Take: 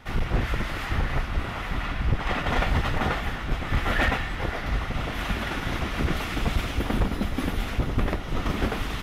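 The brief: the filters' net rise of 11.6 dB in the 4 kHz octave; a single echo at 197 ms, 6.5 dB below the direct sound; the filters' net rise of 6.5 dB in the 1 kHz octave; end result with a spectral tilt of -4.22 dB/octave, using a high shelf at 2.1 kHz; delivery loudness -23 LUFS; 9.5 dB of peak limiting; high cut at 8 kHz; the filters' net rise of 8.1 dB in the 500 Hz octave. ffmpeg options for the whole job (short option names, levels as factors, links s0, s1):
-af "lowpass=8000,equalizer=f=500:t=o:g=8.5,equalizer=f=1000:t=o:g=3.5,highshelf=f=2100:g=7.5,equalizer=f=4000:t=o:g=8,alimiter=limit=0.178:level=0:latency=1,aecho=1:1:197:0.473,volume=1.12"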